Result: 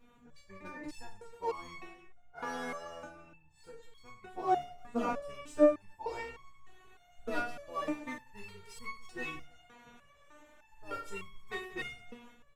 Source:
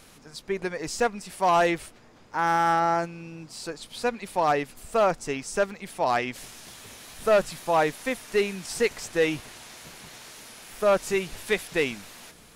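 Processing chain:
adaptive Wiener filter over 9 samples
parametric band 130 Hz +13.5 dB 0.33 octaves
tape wow and flutter 16 cents
pitch-shifted copies added −12 semitones −3 dB
reverse bouncing-ball delay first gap 20 ms, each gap 1.6×, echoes 5
step-sequenced resonator 3.3 Hz 240–1,100 Hz
level +1 dB

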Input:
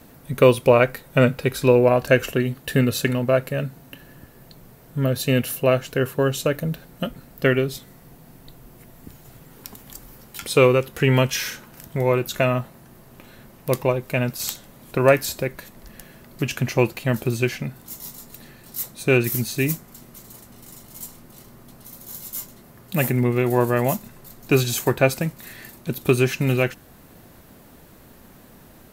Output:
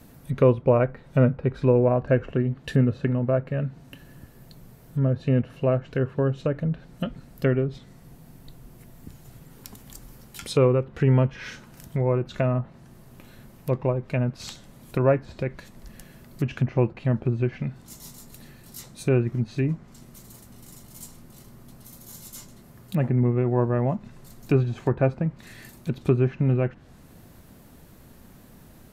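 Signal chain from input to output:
bass and treble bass +6 dB, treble +2 dB
treble cut that deepens with the level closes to 1,200 Hz, closed at −15 dBFS
level −5 dB

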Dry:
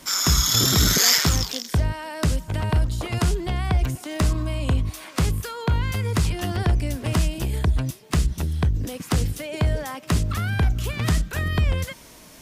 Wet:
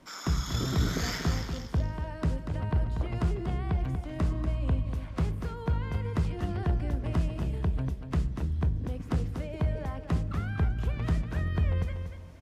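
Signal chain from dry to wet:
low-pass filter 1,100 Hz 6 dB per octave
repeating echo 239 ms, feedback 27%, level −7.5 dB
on a send at −15 dB: convolution reverb RT60 0.90 s, pre-delay 3 ms
on the sum: level −7 dB

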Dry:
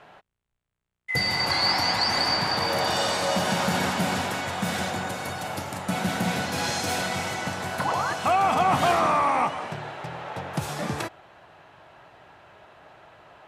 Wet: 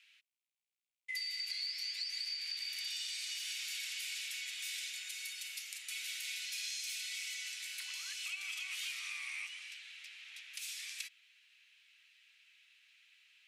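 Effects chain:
Chebyshev high-pass filter 2,300 Hz, order 4
downward compressor, threshold −35 dBFS, peak gain reduction 13 dB
level −3 dB

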